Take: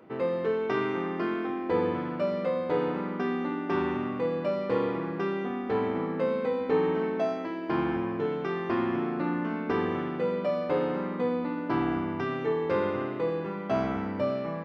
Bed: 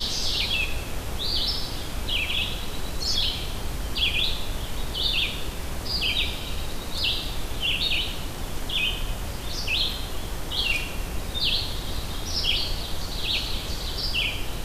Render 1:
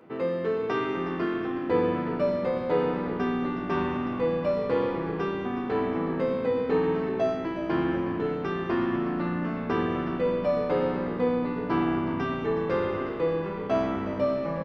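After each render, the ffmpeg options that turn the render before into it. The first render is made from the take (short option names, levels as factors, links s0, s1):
-filter_complex "[0:a]asplit=2[s0][s1];[s1]adelay=12,volume=0.447[s2];[s0][s2]amix=inputs=2:normalize=0,asplit=2[s3][s4];[s4]asplit=5[s5][s6][s7][s8][s9];[s5]adelay=365,afreqshift=-58,volume=0.237[s10];[s6]adelay=730,afreqshift=-116,volume=0.126[s11];[s7]adelay=1095,afreqshift=-174,volume=0.0668[s12];[s8]adelay=1460,afreqshift=-232,volume=0.0355[s13];[s9]adelay=1825,afreqshift=-290,volume=0.0186[s14];[s10][s11][s12][s13][s14]amix=inputs=5:normalize=0[s15];[s3][s15]amix=inputs=2:normalize=0"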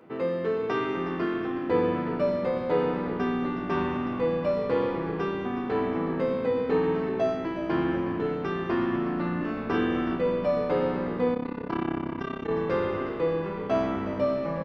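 -filter_complex "[0:a]asettb=1/sr,asplit=3[s0][s1][s2];[s0]atrim=end=9.374[s3];[s1]atrim=start=9.37:end=10.15,asetpts=PTS-STARTPTS,afade=t=in:d=0.004:c=qsin,afade=t=out:st=0.776:d=0.004:c=qsin,asplit=2[s4][s5];[s5]adelay=37,volume=0.631[s6];[s4][s6]amix=inputs=2:normalize=0,atrim=end_sample=34398[s7];[s2]atrim=start=10.146[s8];[s3][s7]acrossfade=d=0.004:c1=hsin:c2=qsin[s9];[s9][s8]acrossfade=d=0.004:c1=qsin:c2=hsin,asplit=3[s10][s11][s12];[s10]afade=t=out:st=11.33:d=0.02[s13];[s11]tremolo=f=33:d=0.919,afade=t=in:st=11.33:d=0.02,afade=t=out:st=12.49:d=0.02[s14];[s12]afade=t=in:st=12.49:d=0.02[s15];[s13][s14][s15]amix=inputs=3:normalize=0"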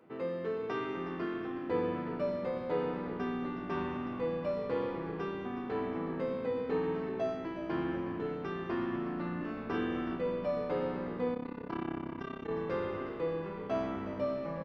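-af "volume=0.398"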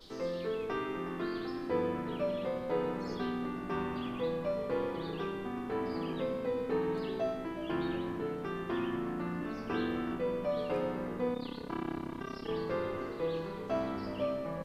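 -filter_complex "[1:a]volume=0.0376[s0];[0:a][s0]amix=inputs=2:normalize=0"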